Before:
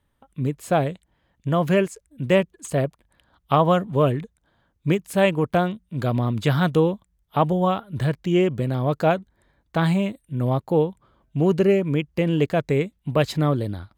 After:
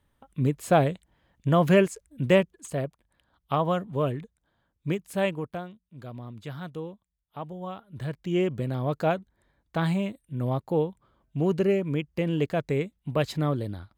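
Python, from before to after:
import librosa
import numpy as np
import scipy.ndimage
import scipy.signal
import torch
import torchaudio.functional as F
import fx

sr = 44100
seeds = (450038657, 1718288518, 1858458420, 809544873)

y = fx.gain(x, sr, db=fx.line((2.22, 0.0), (2.77, -7.5), (5.27, -7.5), (5.68, -17.5), (7.53, -17.5), (8.42, -5.5)))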